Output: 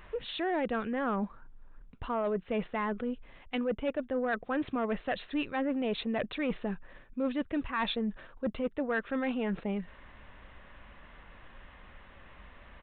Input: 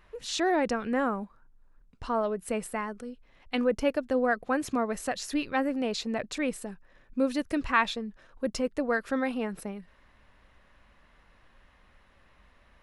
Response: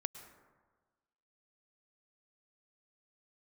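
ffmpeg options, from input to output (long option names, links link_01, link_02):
-af "areverse,acompressor=threshold=-36dB:ratio=5,areverse,aeval=exprs='0.0631*sin(PI/2*1.58*val(0)/0.0631)':channel_layout=same,aresample=8000,aresample=44100"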